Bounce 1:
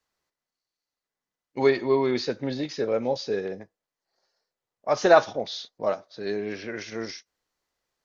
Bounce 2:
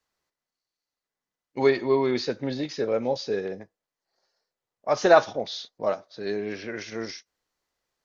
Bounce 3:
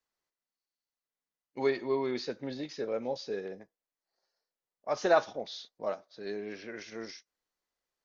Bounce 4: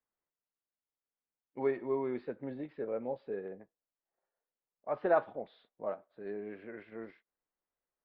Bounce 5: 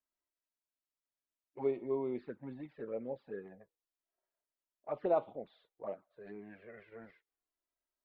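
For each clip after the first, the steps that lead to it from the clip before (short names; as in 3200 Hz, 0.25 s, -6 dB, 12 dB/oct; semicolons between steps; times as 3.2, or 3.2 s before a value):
nothing audible
bell 97 Hz -7 dB 0.86 oct; gain -8 dB
Gaussian blur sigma 4 samples; gain -2.5 dB
envelope flanger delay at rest 3.1 ms, full sweep at -30.5 dBFS; gain -1 dB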